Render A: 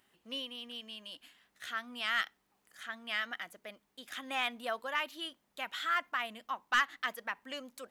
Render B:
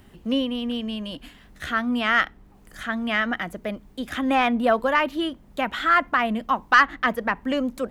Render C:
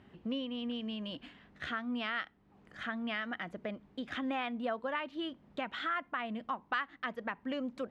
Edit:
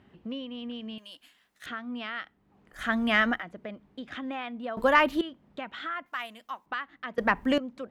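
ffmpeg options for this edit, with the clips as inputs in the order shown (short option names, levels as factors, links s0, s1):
-filter_complex "[0:a]asplit=2[s0][s1];[1:a]asplit=3[s2][s3][s4];[2:a]asplit=6[s5][s6][s7][s8][s9][s10];[s5]atrim=end=0.982[s11];[s0]atrim=start=0.978:end=1.662[s12];[s6]atrim=start=1.658:end=2.86[s13];[s2]atrim=start=2.7:end=3.45[s14];[s7]atrim=start=3.29:end=4.772[s15];[s3]atrim=start=4.768:end=5.212[s16];[s8]atrim=start=5.208:end=6.062[s17];[s1]atrim=start=6.058:end=6.662[s18];[s9]atrim=start=6.658:end=7.182[s19];[s4]atrim=start=7.178:end=7.582[s20];[s10]atrim=start=7.578[s21];[s11][s12]acrossfade=d=0.004:c1=hsin:c2=hsin[s22];[s22][s13]acrossfade=d=0.004:c1=hsin:c2=hsin[s23];[s23][s14]acrossfade=d=0.16:c1=tri:c2=tri[s24];[s24][s15]acrossfade=d=0.16:c1=tri:c2=tri[s25];[s25][s16]acrossfade=d=0.004:c1=hsin:c2=hsin[s26];[s26][s17]acrossfade=d=0.004:c1=hsin:c2=hsin[s27];[s27][s18]acrossfade=d=0.004:c1=hsin:c2=hsin[s28];[s28][s19]acrossfade=d=0.004:c1=hsin:c2=hsin[s29];[s29][s20]acrossfade=d=0.004:c1=hsin:c2=hsin[s30];[s30][s21]acrossfade=d=0.004:c1=hsin:c2=hsin"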